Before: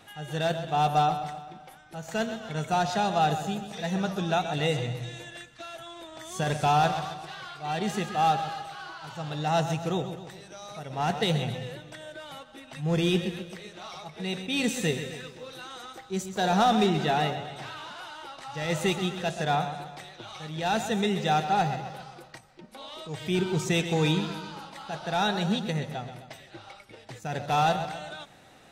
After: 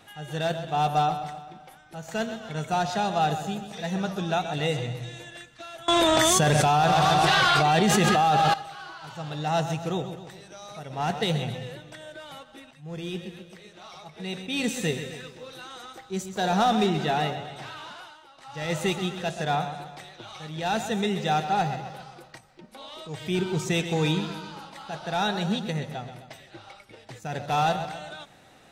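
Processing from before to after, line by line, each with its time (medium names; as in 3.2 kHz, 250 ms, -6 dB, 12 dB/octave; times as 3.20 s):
5.88–8.54 s: level flattener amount 100%
12.71–14.75 s: fade in, from -14 dB
17.92–18.63 s: dip -10.5 dB, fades 0.29 s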